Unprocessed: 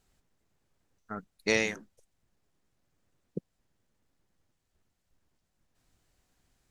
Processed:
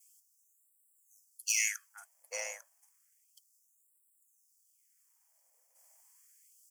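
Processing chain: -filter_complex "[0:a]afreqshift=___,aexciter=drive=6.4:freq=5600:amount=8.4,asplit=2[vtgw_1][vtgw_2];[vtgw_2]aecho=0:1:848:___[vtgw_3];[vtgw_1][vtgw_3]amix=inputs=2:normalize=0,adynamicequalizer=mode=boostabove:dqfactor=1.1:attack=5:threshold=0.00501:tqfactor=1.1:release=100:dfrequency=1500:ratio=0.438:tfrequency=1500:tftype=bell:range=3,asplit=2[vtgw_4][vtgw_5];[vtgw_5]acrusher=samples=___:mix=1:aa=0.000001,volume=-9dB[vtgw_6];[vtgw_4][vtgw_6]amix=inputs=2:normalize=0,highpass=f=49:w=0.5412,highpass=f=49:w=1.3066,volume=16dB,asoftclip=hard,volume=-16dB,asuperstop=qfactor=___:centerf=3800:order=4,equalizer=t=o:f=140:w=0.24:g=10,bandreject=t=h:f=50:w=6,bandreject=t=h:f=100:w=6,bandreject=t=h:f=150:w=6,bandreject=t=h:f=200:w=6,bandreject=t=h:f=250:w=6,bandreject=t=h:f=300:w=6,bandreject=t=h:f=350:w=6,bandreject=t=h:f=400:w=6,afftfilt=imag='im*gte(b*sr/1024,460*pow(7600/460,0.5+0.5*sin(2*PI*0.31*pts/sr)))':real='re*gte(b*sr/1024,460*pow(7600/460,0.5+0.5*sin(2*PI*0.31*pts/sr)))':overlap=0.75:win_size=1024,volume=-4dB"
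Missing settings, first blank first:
80, 0.237, 31, 3.7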